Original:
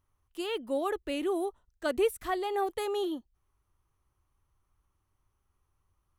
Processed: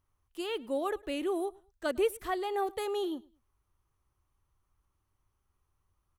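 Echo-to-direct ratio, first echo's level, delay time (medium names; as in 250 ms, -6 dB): -23.5 dB, -24.0 dB, 106 ms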